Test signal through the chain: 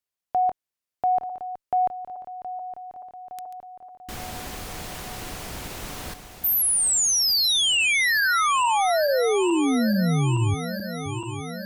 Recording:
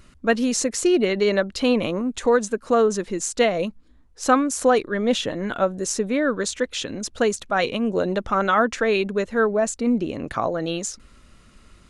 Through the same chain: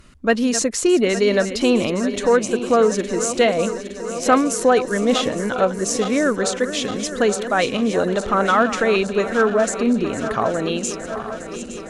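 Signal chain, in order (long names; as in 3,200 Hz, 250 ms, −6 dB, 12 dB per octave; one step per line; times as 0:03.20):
feedback delay that plays each chunk backwards 432 ms, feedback 80%, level −12 dB
harmonic generator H 5 −29 dB, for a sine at −3 dBFS
level +1.5 dB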